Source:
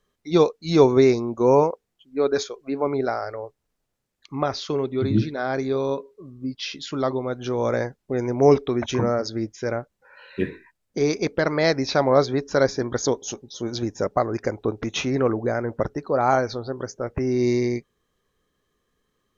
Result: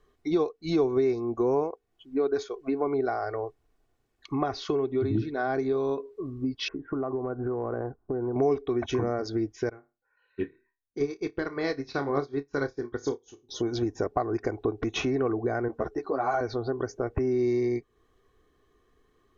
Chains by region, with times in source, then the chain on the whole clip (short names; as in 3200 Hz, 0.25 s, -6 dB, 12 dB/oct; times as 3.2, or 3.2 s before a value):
6.68–8.36 steep low-pass 1500 Hz 48 dB/oct + compressor 3:1, threshold -32 dBFS
9.69–13.49 bell 670 Hz -9.5 dB 0.48 oct + flutter echo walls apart 4.9 m, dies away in 0.25 s + upward expander 2.5:1, over -34 dBFS
15.68–16.41 tone controls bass -5 dB, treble +3 dB + ensemble effect
whole clip: high shelf 3000 Hz -11.5 dB; comb 2.7 ms, depth 56%; compressor 3:1, threshold -34 dBFS; gain +6 dB